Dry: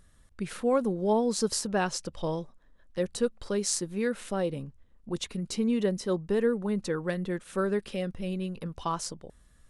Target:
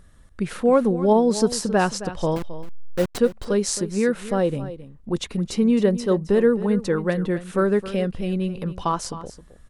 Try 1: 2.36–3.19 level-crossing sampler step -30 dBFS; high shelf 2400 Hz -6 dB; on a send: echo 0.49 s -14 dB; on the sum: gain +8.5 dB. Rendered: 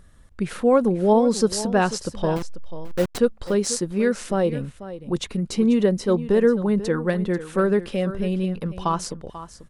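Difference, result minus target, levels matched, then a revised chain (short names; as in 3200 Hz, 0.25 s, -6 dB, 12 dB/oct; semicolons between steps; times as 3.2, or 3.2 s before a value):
echo 0.223 s late
2.36–3.19 level-crossing sampler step -30 dBFS; high shelf 2400 Hz -6 dB; on a send: echo 0.267 s -14 dB; on the sum: gain +8.5 dB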